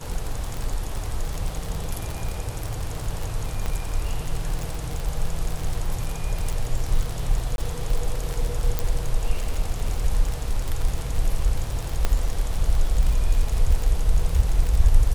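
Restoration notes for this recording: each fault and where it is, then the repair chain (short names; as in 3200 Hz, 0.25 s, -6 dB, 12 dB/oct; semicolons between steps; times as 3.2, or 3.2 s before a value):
crackle 53/s -24 dBFS
3.66 pop -15 dBFS
7.56–7.58 gap 21 ms
8.79 pop -9 dBFS
12.05 pop -8 dBFS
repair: de-click; interpolate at 7.56, 21 ms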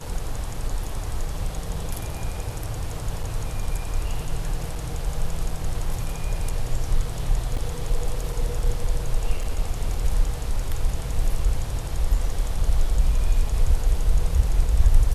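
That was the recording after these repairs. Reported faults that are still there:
none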